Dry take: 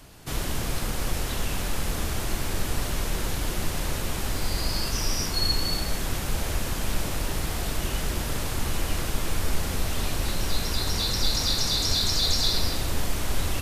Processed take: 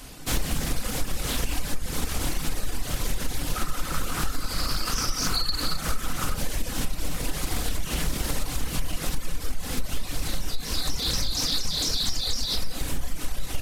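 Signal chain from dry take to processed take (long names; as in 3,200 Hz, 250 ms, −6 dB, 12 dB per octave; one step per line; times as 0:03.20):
high-shelf EQ 4,400 Hz +6 dB
brickwall limiter −17.5 dBFS, peak gain reduction 8 dB
0:03.55–0:06.36: parametric band 1,300 Hz +13.5 dB 0.29 octaves
rectangular room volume 700 cubic metres, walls furnished, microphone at 2 metres
downward compressor 6 to 1, threshold −22 dBFS, peak gain reduction 11.5 dB
reverb reduction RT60 1.2 s
hum removal 77.6 Hz, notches 31
highs frequency-modulated by the lows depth 0.51 ms
level +4 dB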